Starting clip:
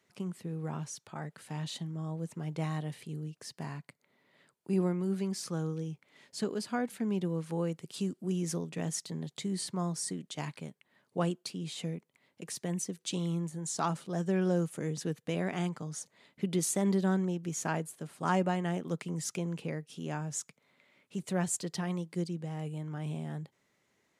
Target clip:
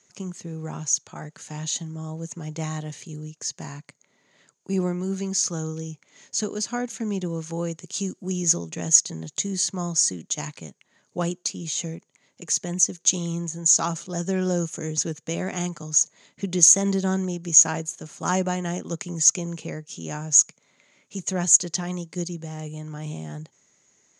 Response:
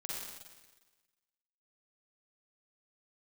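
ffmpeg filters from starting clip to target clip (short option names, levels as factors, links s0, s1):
-af "lowpass=f=6600:t=q:w=13,volume=1.68"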